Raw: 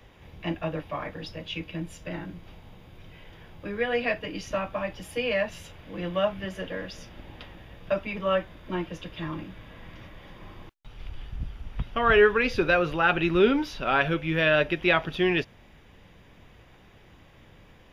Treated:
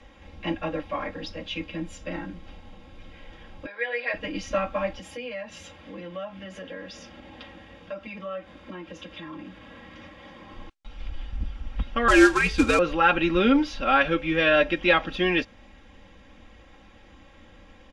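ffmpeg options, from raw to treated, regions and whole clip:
-filter_complex "[0:a]asettb=1/sr,asplit=3[a][b][c];[a]atrim=end=3.664[d];[b]atrim=start=3.66:end=4.14,asetpts=PTS-STARTPTS,afade=t=in:d=0.004:c=qsin,afade=t=out:st=0.476:d=0.004:c=qsin,highpass=f=480:w=0.5412,highpass=f=480:w=1.3066,equalizer=f=490:t=q:w=4:g=-5,equalizer=f=1.2k:t=q:w=4:g=-7,equalizer=f=2.9k:t=q:w=4:g=-9,lowpass=f=4.4k:w=0.5412,lowpass=f=4.4k:w=1.3066,bandreject=f=720:w=13[e];[c]atrim=start=4.136[f];[d][e]acrossfade=d=0.004:c1=hsin:c2=qsin[g];[g][f]acrossfade=d=0.004:c1=qsin:c2=hsin,asettb=1/sr,asplit=3[h][i][j];[h]atrim=end=4.994[k];[i]atrim=start=4.99:end=10.53,asetpts=PTS-STARTPTS,afade=t=in:d=0.004:c=qsin,afade=t=out:st=5.536:d=0.004:c=qsin,acompressor=threshold=-39dB:ratio=3:attack=3.2:release=140:knee=1:detection=peak,highpass=88[l];[j]atrim=start=10.526[m];[k][l]acrossfade=d=0.004:c1=hsin:c2=qsin[n];[n][m]acrossfade=d=0.004:c1=qsin:c2=hsin,asettb=1/sr,asplit=3[o][p][q];[o]atrim=end=12.084[r];[p]atrim=start=12.08:end=12.79,asetpts=PTS-STARTPTS,afade=t=in:d=0.004:c=qsin,afade=t=out:st=0.706:d=0.004:c=qsin,acrusher=bits=3:mode=log:mix=0:aa=0.000001,afreqshift=-75[s];[q]atrim=start=12.786[t];[r][s]acrossfade=d=0.004:c1=hsin:c2=qsin[u];[u][t]acrossfade=d=0.004:c1=qsin:c2=hsin,lowpass=f=8.5k:w=0.5412,lowpass=f=8.5k:w=1.3066,aecho=1:1:3.7:0.88"

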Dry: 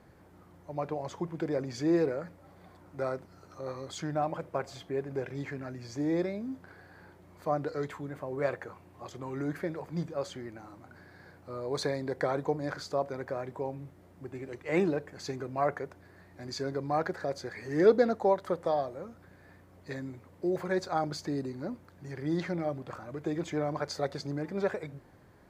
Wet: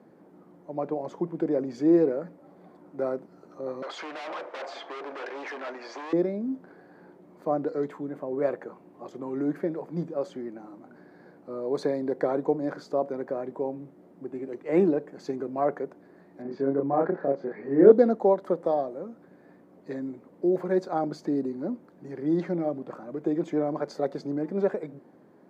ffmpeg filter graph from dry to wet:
-filter_complex "[0:a]asettb=1/sr,asplit=3[a][b][c];[a]atrim=end=3.824[d];[b]atrim=start=3.82:end=6.13,asetpts=PTS-STARTPTS,afade=t=in:d=0.004:c=qsin,afade=t=out:st=2.306:d=0.004:c=qsin,asplit=2[e][f];[f]highpass=f=720:p=1,volume=26dB,asoftclip=type=tanh:threshold=-18dB[g];[e][g]amix=inputs=2:normalize=0,lowpass=f=2.5k:p=1,volume=-6dB,aeval=exprs='0.0422*(abs(mod(val(0)/0.0422+3,4)-2)-1)':c=same,highpass=750,lowpass=5.3k[h];[c]atrim=start=6.126[i];[d][h]acrossfade=d=0.004:c1=hsin:c2=qsin[j];[j][i]acrossfade=d=0.004:c1=qsin:c2=hsin,asettb=1/sr,asplit=3[k][l][m];[k]atrim=end=16.424[n];[l]atrim=start=16.42:end=17.92,asetpts=PTS-STARTPTS,afade=t=in:d=0.004:c=qsin,afade=t=out:st=1.496:d=0.004:c=qsin,lowpass=2k,asplit=2[o][p];[p]adelay=29,volume=-2dB[q];[o][q]amix=inputs=2:normalize=0,atrim=end_sample=66150[r];[m]atrim=start=17.916[s];[n][r]acrossfade=d=0.004:c1=hsin:c2=qsin[t];[t][s]acrossfade=d=0.004:c1=qsin:c2=hsin,highpass=f=200:w=0.5412,highpass=f=200:w=1.3066,tiltshelf=f=970:g=9"

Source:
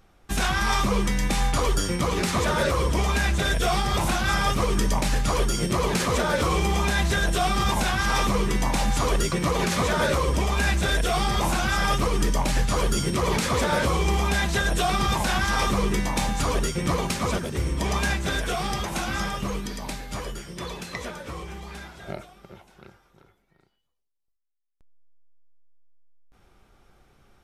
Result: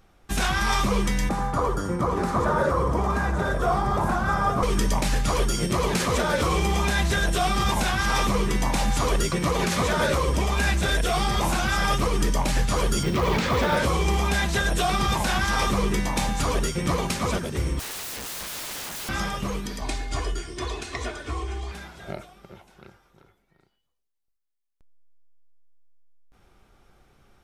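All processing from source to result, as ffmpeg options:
-filter_complex "[0:a]asettb=1/sr,asplit=3[a][b][c];[a]atrim=end=1.294[d];[b]atrim=start=1.29:end=4.63,asetpts=PTS-STARTPTS,afade=t=in:d=0.004:c=qsin,afade=t=out:st=3.336:d=0.004:c=qsin,highpass=57,highshelf=f=1.8k:t=q:w=1.5:g=-12,aecho=1:1:82|868:0.237|0.299,atrim=end_sample=147294[e];[c]atrim=start=4.626[f];[d][e]acrossfade=d=0.004:c1=hsin:c2=qsin[g];[g][f]acrossfade=d=0.004:c1=qsin:c2=hsin,asettb=1/sr,asplit=3[h][i][j];[h]atrim=end=13.034[k];[i]atrim=start=13.03:end=13.77,asetpts=PTS-STARTPTS,afade=t=in:d=0.004:c=qsin,afade=t=out:st=0.736:d=0.004:c=qsin,aeval=exprs='val(0)+0.5*0.0251*sgn(val(0))':c=same,lowpass=4.3k,acrusher=bits=6:mode=log:mix=0:aa=0.000001[l];[j]atrim=start=13.766[m];[k][l]acrossfade=d=0.004:c1=hsin:c2=qsin[n];[n][m]acrossfade=d=0.004:c1=qsin:c2=hsin,asettb=1/sr,asplit=3[o][p][q];[o]atrim=end=17.794[r];[p]atrim=start=17.79:end=19.09,asetpts=PTS-STARTPTS,afade=t=in:d=0.004:c=qsin,afade=t=out:st=1.296:d=0.004:c=qsin,lowshelf=f=240:g=-6.5,aeval=exprs='(mod(29.9*val(0)+1,2)-1)/29.9':c=same[s];[q]atrim=start=19.086[t];[r][s]acrossfade=d=0.004:c1=hsin:c2=qsin[u];[u][t]acrossfade=d=0.004:c1=qsin:c2=hsin,asettb=1/sr,asplit=3[v][w][x];[v]atrim=end=19.814[y];[w]atrim=start=19.81:end=21.72,asetpts=PTS-STARTPTS,afade=t=in:d=0.004:c=qsin,afade=t=out:st=1.906:d=0.004:c=qsin,lowpass=f=9.5k:w=0.5412,lowpass=f=9.5k:w=1.3066,equalizer=f=68:w=0.95:g=4.5,aecho=1:1:2.8:0.92,atrim=end_sample=84231[z];[x]atrim=start=21.716[aa];[y][z]acrossfade=d=0.004:c1=hsin:c2=qsin[ab];[ab][aa]acrossfade=d=0.004:c1=qsin:c2=hsin"

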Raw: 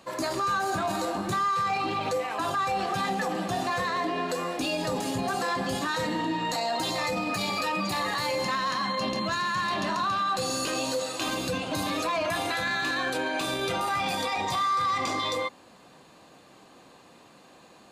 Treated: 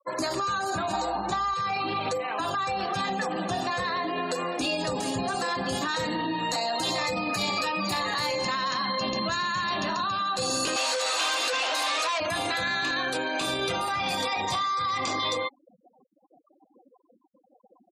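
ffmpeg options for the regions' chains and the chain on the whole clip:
-filter_complex "[0:a]asettb=1/sr,asplit=3[a][b][c];[a]atrim=end=0.934[d];[b]atrim=start=0.93:end=1.54,asetpts=PTS-STARTPTS,afade=t=in:d=0.004:c=qsin,afade=t=out:st=0.606:d=0.004:c=qsin,highpass=170,lowpass=7.7k,equalizer=f=840:w=2.9:g=13.5,aeval=exprs='val(0)+0.00398*(sin(2*PI*60*n/s)+sin(2*PI*2*60*n/s)/2+sin(2*PI*3*60*n/s)/3+sin(2*PI*4*60*n/s)/4+sin(2*PI*5*60*n/s)/5)':c=same[e];[c]atrim=start=1.536[f];[d][e]acrossfade=d=0.004:c1=hsin:c2=qsin[g];[g][f]acrossfade=d=0.004:c1=qsin:c2=hsin,asettb=1/sr,asplit=3[h][i][j];[h]atrim=end=10.764[k];[i]atrim=start=10.76:end=12.2,asetpts=PTS-STARTPTS,afade=t=in:d=0.004:c=qsin,afade=t=out:st=1.436:d=0.004:c=qsin,asplit=2[l][m];[m]highpass=f=720:p=1,volume=29dB,asoftclip=type=tanh:threshold=-20.5dB[n];[l][n]amix=inputs=2:normalize=0,lowpass=f=3.8k:p=1,volume=-6dB,highpass=600[o];[j]atrim=start=12.196[p];[k][o]acrossfade=d=0.004:c1=hsin:c2=qsin[q];[q][p]acrossfade=d=0.004:c1=qsin:c2=hsin,equalizer=f=120:w=0.63:g=-3,afftfilt=real='re*gte(hypot(re,im),0.01)':imag='im*gte(hypot(re,im),0.01)':win_size=1024:overlap=0.75,acrossover=split=140|3000[r][s][t];[s]acompressor=threshold=-30dB:ratio=6[u];[r][u][t]amix=inputs=3:normalize=0,volume=3.5dB"

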